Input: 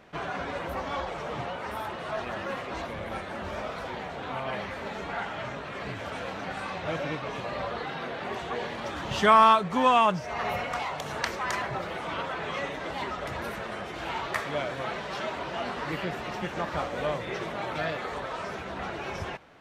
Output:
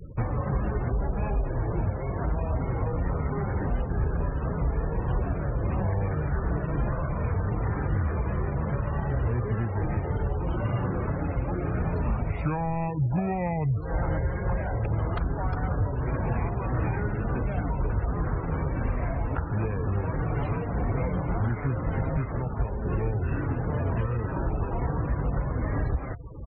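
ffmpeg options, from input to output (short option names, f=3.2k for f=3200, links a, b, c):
-filter_complex "[0:a]acrossover=split=350|2800[a][b][c];[a]acompressor=threshold=-45dB:ratio=4[d];[b]acompressor=threshold=-41dB:ratio=4[e];[c]acompressor=threshold=-58dB:ratio=4[f];[d][e][f]amix=inputs=3:normalize=0,lowshelf=f=110:g=8,aecho=1:1:970:0.158,afftfilt=real='re*gte(hypot(re,im),0.00631)':imag='im*gte(hypot(re,im),0.00631)':win_size=1024:overlap=0.75,bass=f=250:g=14,treble=f=4k:g=0,alimiter=level_in=1dB:limit=-24dB:level=0:latency=1:release=263,volume=-1dB,asetrate=32667,aresample=44100,volume=7.5dB"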